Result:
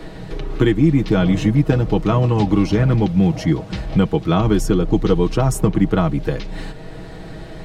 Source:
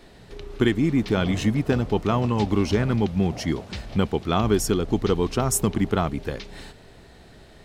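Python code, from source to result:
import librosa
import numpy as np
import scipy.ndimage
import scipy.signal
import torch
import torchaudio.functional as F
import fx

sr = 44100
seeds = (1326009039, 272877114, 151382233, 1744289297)

y = fx.tilt_eq(x, sr, slope=-1.5)
y = y + 0.65 * np.pad(y, (int(6.3 * sr / 1000.0), 0))[:len(y)]
y = fx.band_squash(y, sr, depth_pct=40)
y = F.gain(torch.from_numpy(y), 2.0).numpy()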